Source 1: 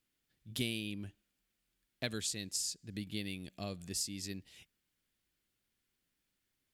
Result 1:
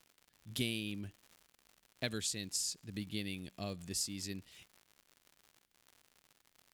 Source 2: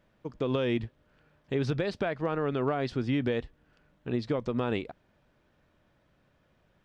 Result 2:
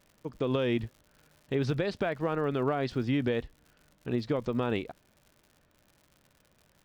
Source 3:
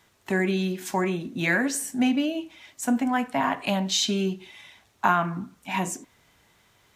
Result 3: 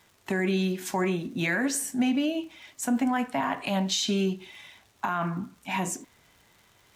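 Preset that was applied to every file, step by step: peak limiter -17.5 dBFS; crackle 130 per s -47 dBFS

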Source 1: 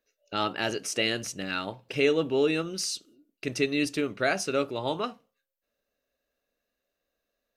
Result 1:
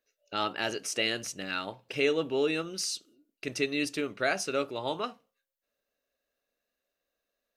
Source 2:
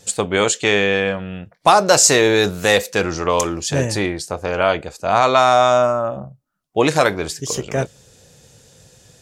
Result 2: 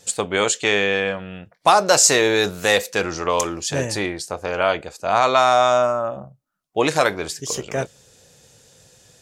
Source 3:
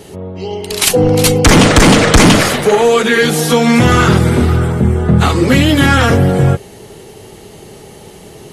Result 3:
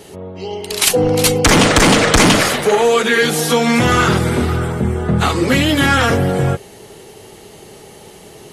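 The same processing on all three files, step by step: bass shelf 290 Hz -6 dB; trim -1.5 dB

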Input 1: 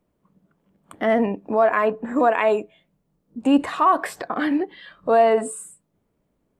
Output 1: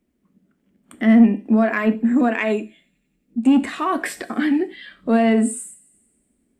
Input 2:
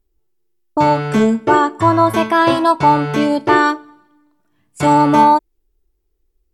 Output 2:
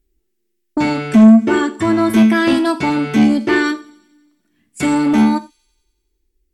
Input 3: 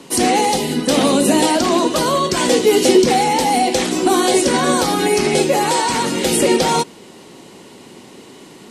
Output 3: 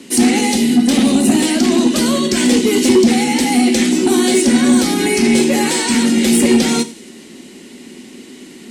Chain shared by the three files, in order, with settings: graphic EQ 125/250/500/1000/2000/8000 Hz -10/+11/-5/-10/+5/+3 dB; in parallel at -1.5 dB: gain riding within 4 dB 0.5 s; on the sum: dynamic bell 220 Hz, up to +8 dB, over -26 dBFS, Q 6; on a send: feedback echo behind a high-pass 91 ms, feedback 66%, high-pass 5.3 kHz, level -19.5 dB; on the sum: saturation -0.5 dBFS; gated-style reverb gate 130 ms falling, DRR 9.5 dB; trim -5 dB

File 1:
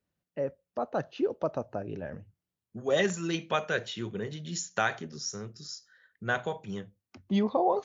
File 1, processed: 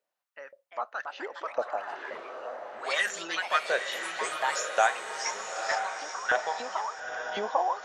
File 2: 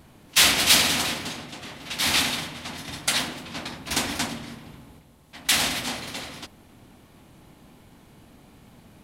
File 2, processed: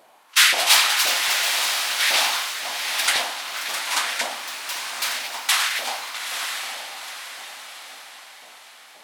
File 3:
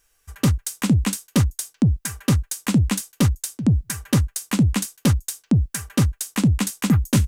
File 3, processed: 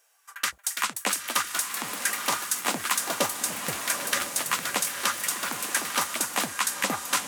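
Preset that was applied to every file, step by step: LFO high-pass saw up 1.9 Hz 560–1800 Hz; on a send: echo that smears into a reverb 912 ms, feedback 45%, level -6 dB; on the sum: ever faster or slower copies 404 ms, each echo +3 st, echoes 3, each echo -6 dB

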